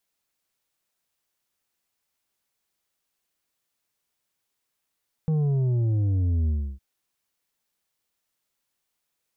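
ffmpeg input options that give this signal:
-f lavfi -i "aevalsrc='0.0891*clip((1.51-t)/0.31,0,1)*tanh(2.11*sin(2*PI*160*1.51/log(65/160)*(exp(log(65/160)*t/1.51)-1)))/tanh(2.11)':d=1.51:s=44100"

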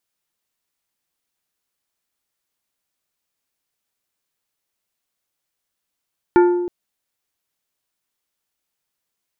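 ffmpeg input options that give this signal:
-f lavfi -i "aevalsrc='0.422*pow(10,-3*t/1.24)*sin(2*PI*353*t)+0.188*pow(10,-3*t/0.653)*sin(2*PI*882.5*t)+0.0841*pow(10,-3*t/0.47)*sin(2*PI*1412*t)+0.0376*pow(10,-3*t/0.402)*sin(2*PI*1765*t)+0.0168*pow(10,-3*t/0.334)*sin(2*PI*2294.5*t)':d=0.32:s=44100"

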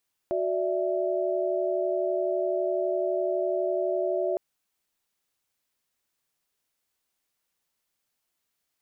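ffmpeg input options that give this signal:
-f lavfi -i "aevalsrc='0.0376*(sin(2*PI*369.99*t)+sin(2*PI*587.33*t)+sin(2*PI*659.26*t))':d=4.06:s=44100"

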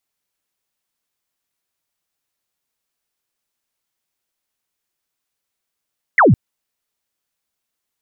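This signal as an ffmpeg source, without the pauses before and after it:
-f lavfi -i "aevalsrc='0.447*clip(t/0.002,0,1)*clip((0.16-t)/0.002,0,1)*sin(2*PI*2200*0.16/log(91/2200)*(exp(log(91/2200)*t/0.16)-1))':d=0.16:s=44100"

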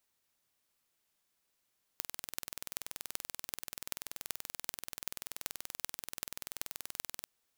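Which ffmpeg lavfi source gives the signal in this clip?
-f lavfi -i "aevalsrc='0.447*eq(mod(n,2120),0)*(0.5+0.5*eq(mod(n,16960),0))':d=5.27:s=44100"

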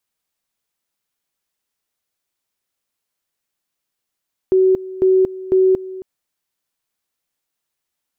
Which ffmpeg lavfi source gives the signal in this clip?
-f lavfi -i "aevalsrc='pow(10,(-9.5-17.5*gte(mod(t,0.5),0.23))/20)*sin(2*PI*376*t)':d=1.5:s=44100"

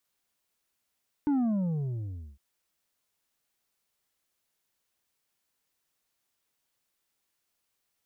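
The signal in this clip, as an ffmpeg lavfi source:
-f lavfi -i "aevalsrc='0.0668*clip((1.11-t)/1.09,0,1)*tanh(1.88*sin(2*PI*300*1.11/log(65/300)*(exp(log(65/300)*t/1.11)-1)))/tanh(1.88)':d=1.11:s=44100"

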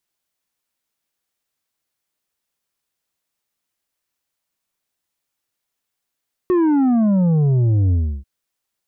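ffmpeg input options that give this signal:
-f lavfi -i "aevalsrc='0.211*clip((1.74-t)/0.32,0,1)*tanh(2.11*sin(2*PI*370*1.74/log(65/370)*(exp(log(65/370)*t/1.74)-1)))/tanh(2.11)':d=1.74:s=44100"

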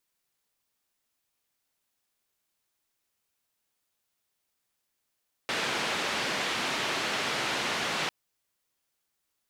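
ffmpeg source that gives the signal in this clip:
-f lavfi -i "anoisesrc=c=white:d=2.6:r=44100:seed=1,highpass=f=160,lowpass=f=3200,volume=-17.5dB"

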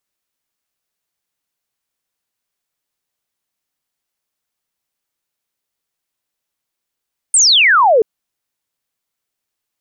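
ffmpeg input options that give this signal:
-f lavfi -i "aevalsrc='0.447*clip(t/0.002,0,1)*clip((0.68-t)/0.002,0,1)*sin(2*PI*9100*0.68/log(410/9100)*(exp(log(410/9100)*t/0.68)-1))':d=0.68:s=44100"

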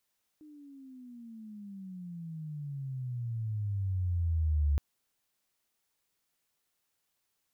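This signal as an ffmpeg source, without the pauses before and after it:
-f lavfi -i "aevalsrc='pow(10,(-23.5+26*(t/4.37-1))/20)*sin(2*PI*308*4.37/(-25.5*log(2)/12)*(exp(-25.5*log(2)/12*t/4.37)-1))':d=4.37:s=44100"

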